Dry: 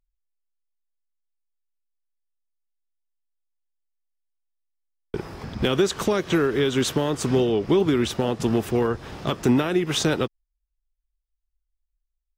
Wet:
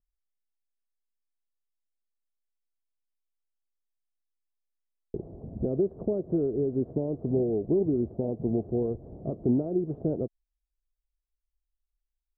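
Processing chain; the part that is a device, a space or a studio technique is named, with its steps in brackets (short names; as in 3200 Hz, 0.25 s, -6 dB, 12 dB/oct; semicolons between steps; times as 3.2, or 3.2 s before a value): under water (LPF 490 Hz 24 dB/oct; bell 670 Hz +11 dB 0.39 oct); gain -5.5 dB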